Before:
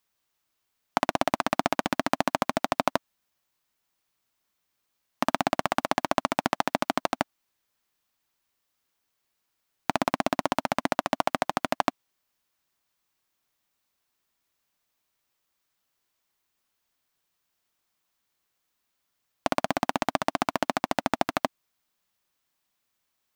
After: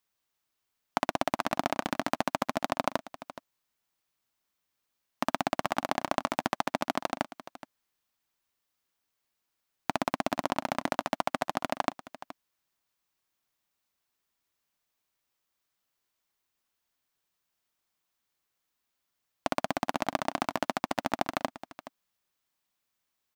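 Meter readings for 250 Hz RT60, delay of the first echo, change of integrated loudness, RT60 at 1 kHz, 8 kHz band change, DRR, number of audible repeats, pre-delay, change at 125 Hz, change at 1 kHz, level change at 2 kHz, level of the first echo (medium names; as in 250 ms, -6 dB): no reverb, 422 ms, -4.0 dB, no reverb, -4.0 dB, no reverb, 1, no reverb, -4.0 dB, -4.0 dB, -4.0 dB, -15.5 dB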